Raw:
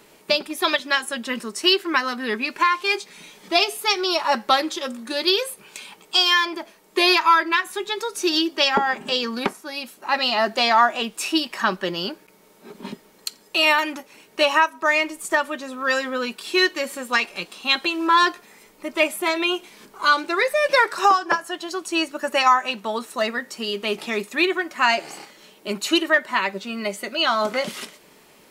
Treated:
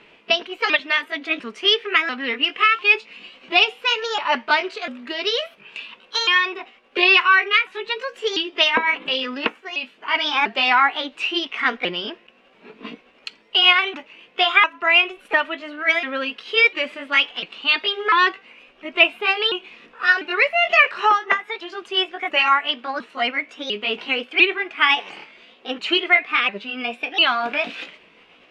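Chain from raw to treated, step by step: sawtooth pitch modulation +4.5 st, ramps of 697 ms; resonant low-pass 2.7 kHz, resonance Q 3.1; trim -1 dB

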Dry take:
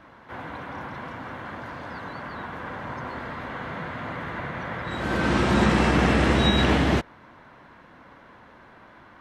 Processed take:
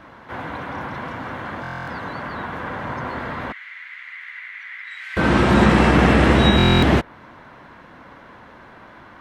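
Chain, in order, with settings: 3.52–5.17 s: ladder high-pass 1.9 kHz, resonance 70%; dynamic bell 6 kHz, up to -5 dB, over -47 dBFS, Q 0.86; buffer glitch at 1.62/6.57 s, samples 1024, times 10; trim +6 dB

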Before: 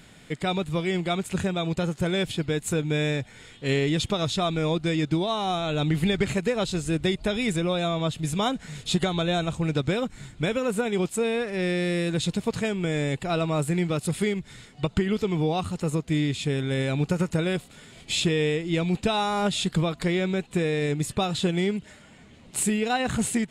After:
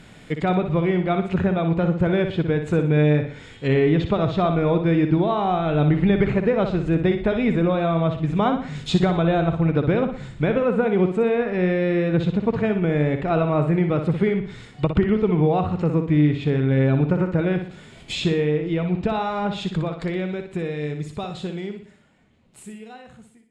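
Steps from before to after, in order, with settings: fade out at the end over 7.15 s; treble shelf 3.4 kHz -8.5 dB; low-pass that closes with the level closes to 2.1 kHz, closed at -24.5 dBFS; flutter echo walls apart 10.3 m, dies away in 0.47 s; trim +5.5 dB

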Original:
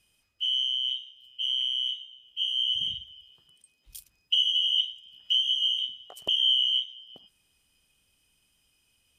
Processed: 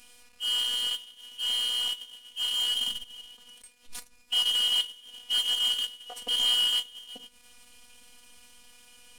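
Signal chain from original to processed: CVSD coder 64 kbps; power-law waveshaper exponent 0.7; robot voice 244 Hz; on a send at -10.5 dB: reverberation RT60 0.40 s, pre-delay 3 ms; on the sum: transient shaper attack -6 dB, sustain -10 dB

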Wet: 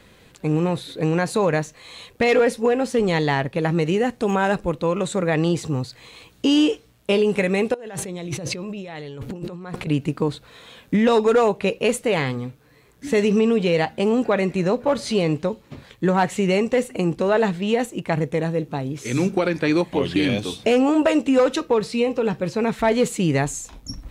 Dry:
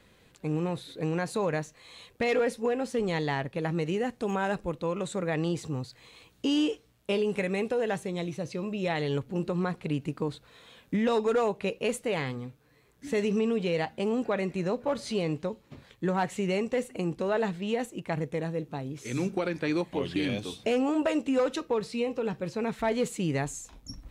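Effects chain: 7.74–9.87 s: compressor with a negative ratio -41 dBFS, ratio -1; trim +9 dB

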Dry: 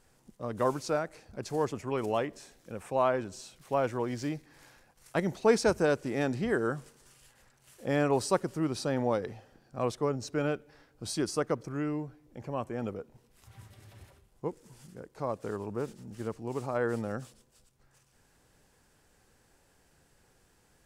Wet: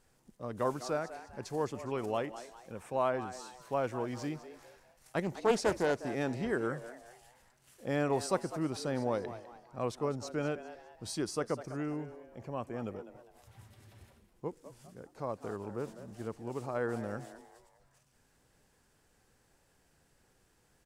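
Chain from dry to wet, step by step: frequency-shifting echo 202 ms, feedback 38%, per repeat +120 Hz, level -13.5 dB; 5.22–5.99 s: loudspeaker Doppler distortion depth 0.32 ms; trim -4 dB

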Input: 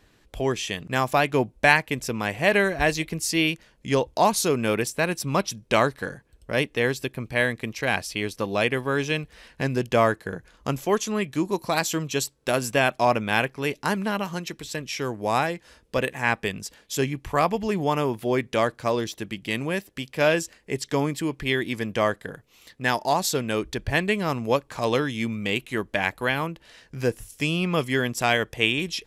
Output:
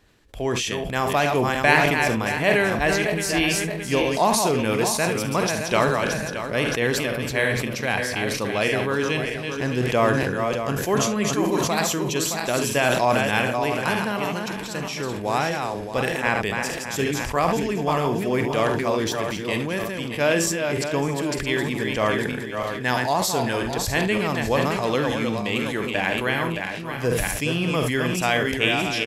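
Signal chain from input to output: backward echo that repeats 310 ms, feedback 52%, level -5 dB; early reflections 48 ms -13 dB, 72 ms -16 dB; decay stretcher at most 29 dB/s; trim -1 dB

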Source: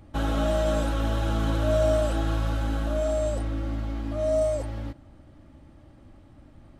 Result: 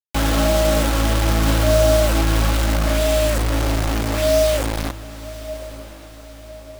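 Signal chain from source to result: bit crusher 5-bit; echo that smears into a reverb 1056 ms, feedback 50%, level -15.5 dB; trim +7 dB

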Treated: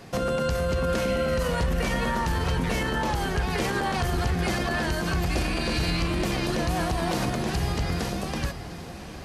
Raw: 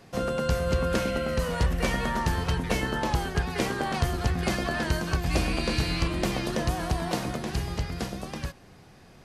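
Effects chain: peak limiter -25 dBFS, peak gain reduction 10 dB; echo that smears into a reverb 760 ms, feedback 49%, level -12 dB; trim +7 dB

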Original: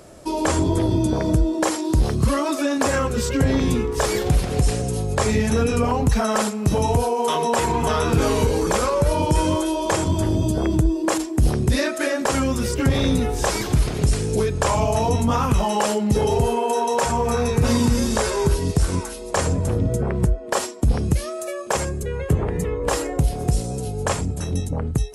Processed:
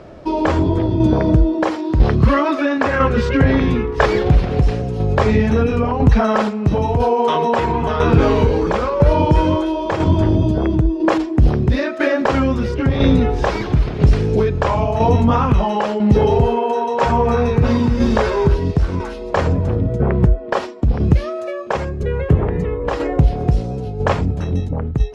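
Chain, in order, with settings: 1.77–4.06 s: dynamic bell 1.8 kHz, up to +6 dB, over -37 dBFS, Q 0.96; tremolo saw down 1 Hz, depth 50%; distance through air 260 m; trim +7.5 dB

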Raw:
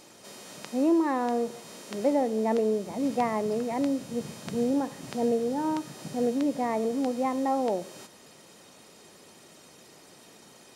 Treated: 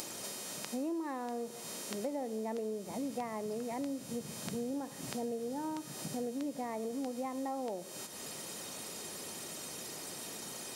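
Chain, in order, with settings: upward compressor, threshold -46 dBFS; treble shelf 6.9 kHz +11 dB; compression 4:1, threshold -43 dBFS, peak gain reduction 19.5 dB; trim +4.5 dB

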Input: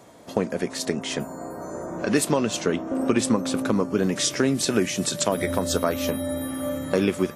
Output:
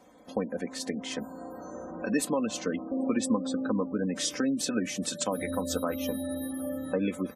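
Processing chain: spectral gate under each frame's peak -25 dB strong; comb 3.9 ms, depth 69%; trim -8.5 dB

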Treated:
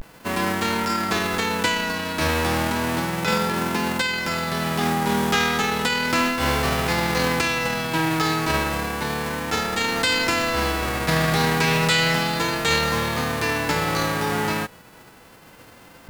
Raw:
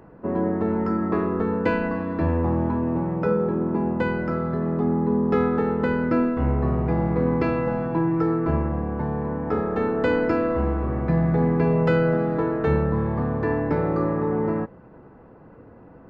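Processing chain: formants flattened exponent 0.3; vibrato 0.33 Hz 56 cents; loudspeaker Doppler distortion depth 0.11 ms

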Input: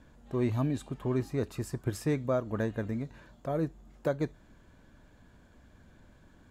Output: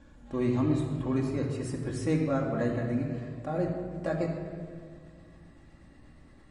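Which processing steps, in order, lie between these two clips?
pitch bend over the whole clip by +3 st starting unshifted; simulated room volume 3900 m³, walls mixed, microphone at 2.3 m; MP3 40 kbps 32 kHz

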